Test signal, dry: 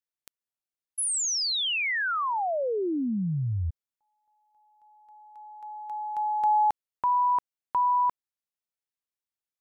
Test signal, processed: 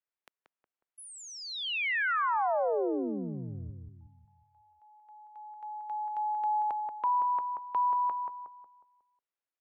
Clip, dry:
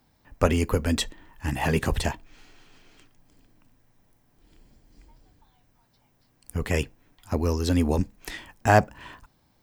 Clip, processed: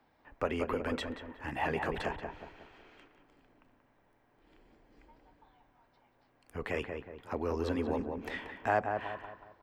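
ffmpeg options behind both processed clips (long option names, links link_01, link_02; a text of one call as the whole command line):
ffmpeg -i in.wav -filter_complex "[0:a]acompressor=threshold=-30dB:ratio=2:attack=0.56:release=241:detection=peak,acrossover=split=300 3000:gain=0.224 1 0.112[link_01][link_02][link_03];[link_01][link_02][link_03]amix=inputs=3:normalize=0,asplit=2[link_04][link_05];[link_05]adelay=182,lowpass=frequency=1500:poles=1,volume=-4.5dB,asplit=2[link_06][link_07];[link_07]adelay=182,lowpass=frequency=1500:poles=1,volume=0.45,asplit=2[link_08][link_09];[link_09]adelay=182,lowpass=frequency=1500:poles=1,volume=0.45,asplit=2[link_10][link_11];[link_11]adelay=182,lowpass=frequency=1500:poles=1,volume=0.45,asplit=2[link_12][link_13];[link_13]adelay=182,lowpass=frequency=1500:poles=1,volume=0.45,asplit=2[link_14][link_15];[link_15]adelay=182,lowpass=frequency=1500:poles=1,volume=0.45[link_16];[link_04][link_06][link_08][link_10][link_12][link_14][link_16]amix=inputs=7:normalize=0,volume=1.5dB" out.wav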